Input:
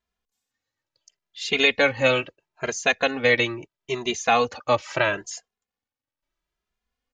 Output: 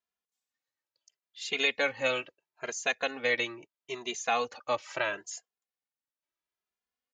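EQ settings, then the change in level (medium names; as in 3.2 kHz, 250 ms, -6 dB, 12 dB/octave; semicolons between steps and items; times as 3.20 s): high-pass 380 Hz 6 dB/octave; dynamic bell 7.1 kHz, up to +5 dB, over -48 dBFS, Q 4.7; -8.0 dB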